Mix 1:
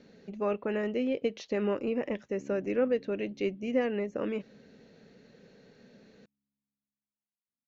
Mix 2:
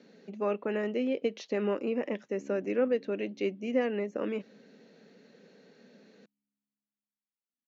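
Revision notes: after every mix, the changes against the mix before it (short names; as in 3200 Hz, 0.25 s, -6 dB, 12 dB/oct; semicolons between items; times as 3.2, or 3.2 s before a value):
master: add HPF 180 Hz 24 dB/oct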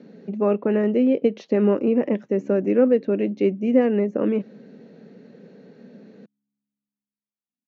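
speech +6.0 dB; master: add tilt -3.5 dB/oct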